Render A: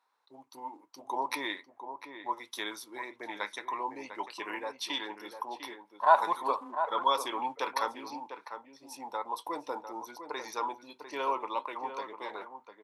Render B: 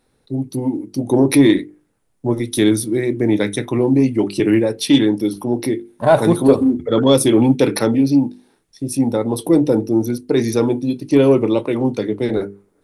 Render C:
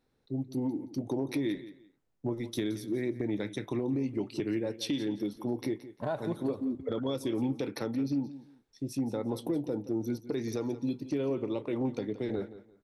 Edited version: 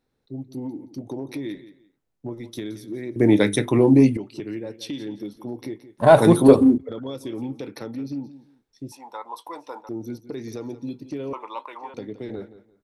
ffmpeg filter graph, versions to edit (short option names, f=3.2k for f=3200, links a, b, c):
-filter_complex "[1:a]asplit=2[a][b];[0:a]asplit=2[c][d];[2:a]asplit=5[e][f][g][h][i];[e]atrim=end=3.162[j];[a]atrim=start=3.158:end=4.172[k];[f]atrim=start=4.168:end=5.982[l];[b]atrim=start=5.978:end=6.782[m];[g]atrim=start=6.778:end=8.922[n];[c]atrim=start=8.918:end=9.892[o];[h]atrim=start=9.888:end=11.332[p];[d]atrim=start=11.328:end=11.942[q];[i]atrim=start=11.938[r];[j][k]acrossfade=d=0.004:c1=hsin:c2=hsin[s];[s][l]acrossfade=d=0.004:c1=hsin:c2=hsin[t];[t][m]acrossfade=d=0.004:c1=hsin:c2=hsin[u];[u][n]acrossfade=d=0.004:c1=hsin:c2=hsin[v];[v][o]acrossfade=d=0.004:c1=hsin:c2=hsin[w];[w][p]acrossfade=d=0.004:c1=hsin:c2=hsin[x];[x][q]acrossfade=d=0.004:c1=hsin:c2=hsin[y];[y][r]acrossfade=d=0.004:c1=hsin:c2=hsin"